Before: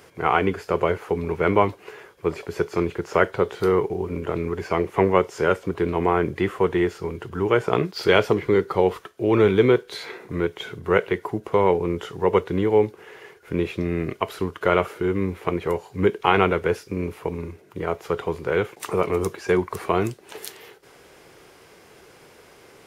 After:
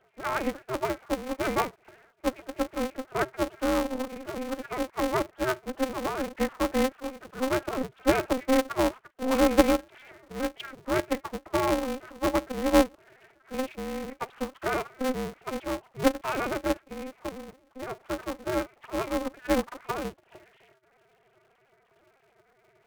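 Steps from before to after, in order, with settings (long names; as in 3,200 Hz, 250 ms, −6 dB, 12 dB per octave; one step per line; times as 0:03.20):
three sine waves on the formant tracks
ring modulator with a square carrier 130 Hz
level −6.5 dB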